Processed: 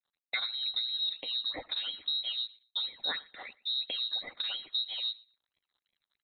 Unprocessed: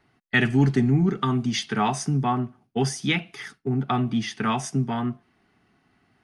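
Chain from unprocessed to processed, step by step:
downward compressor 3 to 1, threshold −34 dBFS, peak gain reduction 14.5 dB
dead-zone distortion −59 dBFS
all-pass phaser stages 8, 3 Hz, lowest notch 330–1,600 Hz
on a send: repeating echo 117 ms, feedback 19%, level −24 dB
on the sum: voice inversion scrambler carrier 4,000 Hz

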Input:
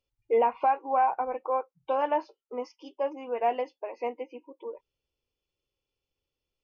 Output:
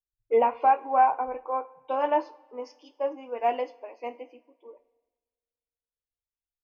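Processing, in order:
coupled-rooms reverb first 0.38 s, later 3.2 s, from −18 dB, DRR 10.5 dB
multiband upward and downward expander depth 70%

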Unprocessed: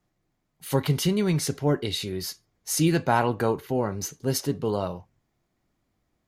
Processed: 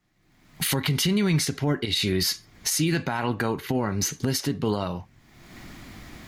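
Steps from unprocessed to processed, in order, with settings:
camcorder AGC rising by 41 dB per second
octave-band graphic EQ 250/500/2,000/4,000 Hz +3/−5/+6/+4 dB
brickwall limiter −14.5 dBFS, peak gain reduction 8.5 dB

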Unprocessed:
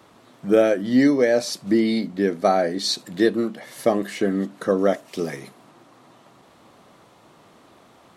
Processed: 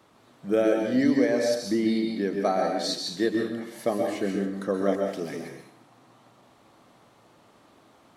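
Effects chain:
dense smooth reverb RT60 0.65 s, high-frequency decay 0.95×, pre-delay 115 ms, DRR 2.5 dB
level −7 dB

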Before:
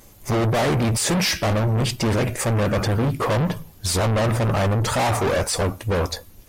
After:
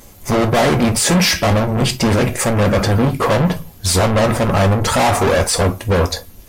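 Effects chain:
reverb whose tail is shaped and stops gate 80 ms falling, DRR 8 dB
level +6 dB

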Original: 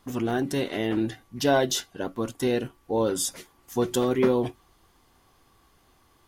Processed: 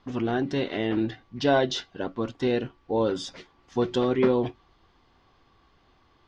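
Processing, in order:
low-pass filter 4,700 Hz 24 dB per octave

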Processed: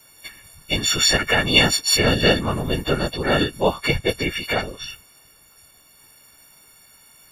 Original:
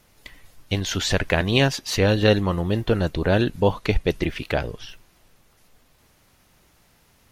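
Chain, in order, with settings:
every partial snapped to a pitch grid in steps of 4 semitones
random phases in short frames
level −1 dB

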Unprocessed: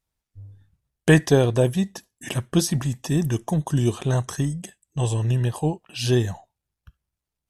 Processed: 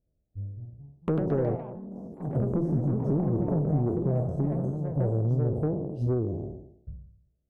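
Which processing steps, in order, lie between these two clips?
peak hold with a decay on every bin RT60 0.73 s
elliptic low-pass filter 630 Hz, stop band 40 dB
downward compressor 6 to 1, threshold −31 dBFS, peak gain reduction 19 dB
harmonic generator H 2 −6 dB, 5 −13 dB, 6 −26 dB, 7 −21 dB, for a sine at −17.5 dBFS
0:01.55–0:02.35: output level in coarse steps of 22 dB
sine wavefolder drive 5 dB, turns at −12.5 dBFS
delay with pitch and tempo change per echo 269 ms, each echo +3 semitones, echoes 3, each echo −6 dB
level −6 dB

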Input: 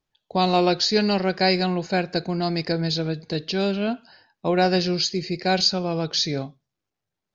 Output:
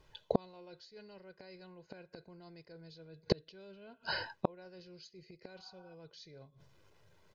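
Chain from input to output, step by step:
low-pass filter 3,200 Hz 6 dB per octave
speech leveller within 3 dB 2 s
comb filter 2 ms, depth 58%
reversed playback
downward compressor 5 to 1, threshold −28 dBFS, peak gain reduction 12 dB
reversed playback
gate with flip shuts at −29 dBFS, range −39 dB
healed spectral selection 0:05.58–0:05.91, 670–1,500 Hz before
level +15.5 dB

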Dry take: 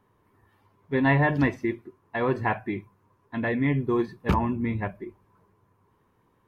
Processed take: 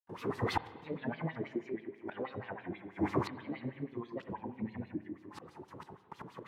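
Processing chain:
camcorder AGC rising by 42 dB per second
high-pass filter 140 Hz 12 dB per octave
granular cloud 200 ms, grains 15 per second, pitch spread up and down by 3 semitones
bucket-brigade delay 95 ms, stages 2,048, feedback 62%, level −10.5 dB
gate with flip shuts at −31 dBFS, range −32 dB
in parallel at +1 dB: downward compressor, threshold −58 dBFS, peak gain reduction 18.5 dB
on the sum: noise gate with hold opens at −55 dBFS
spectral tilt −2.5 dB per octave
auto-filter band-pass sine 6.2 Hz 400–4,300 Hz
bass and treble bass +12 dB, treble +15 dB
on a send at −15 dB: convolution reverb RT60 1.7 s, pre-delay 32 ms
on the sum: one half of a high-frequency compander encoder only
level +17 dB

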